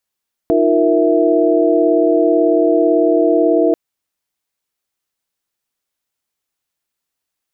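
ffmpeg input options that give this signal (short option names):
-f lavfi -i "aevalsrc='0.168*(sin(2*PI*311.13*t)+sin(2*PI*349.23*t)+sin(2*PI*466.16*t)+sin(2*PI*659.26*t))':d=3.24:s=44100"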